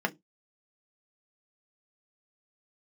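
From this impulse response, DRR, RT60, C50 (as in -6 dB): 3.0 dB, 0.15 s, 25.5 dB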